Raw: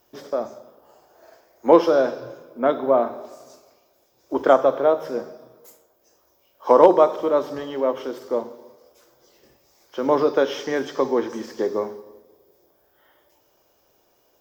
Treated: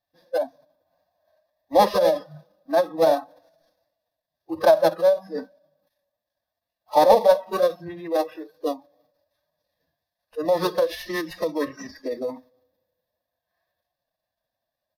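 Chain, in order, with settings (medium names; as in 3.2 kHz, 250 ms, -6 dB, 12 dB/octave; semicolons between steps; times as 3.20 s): dead-time distortion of 0.097 ms; spectral noise reduction 20 dB; in parallel at 0 dB: compression 6:1, threshold -25 dBFS, peak gain reduction 17 dB; on the sum: static phaser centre 1.7 kHz, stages 8; wide varispeed 0.962×; resampled via 32 kHz; formant-preserving pitch shift +4 st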